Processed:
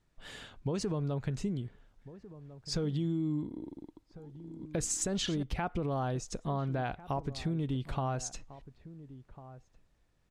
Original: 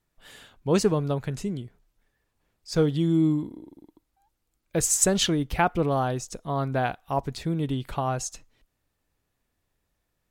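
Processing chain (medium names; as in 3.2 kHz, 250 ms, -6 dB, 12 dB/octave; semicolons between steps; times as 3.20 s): 3.43–5.43 s: chunks repeated in reverse 612 ms, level -11.5 dB; low-pass 7.5 kHz 12 dB/octave; bass shelf 250 Hz +5 dB; peak limiter -17 dBFS, peak gain reduction 9.5 dB; compression 2.5:1, threshold -35 dBFS, peak gain reduction 9.5 dB; echo from a far wall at 240 m, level -16 dB; trim +1 dB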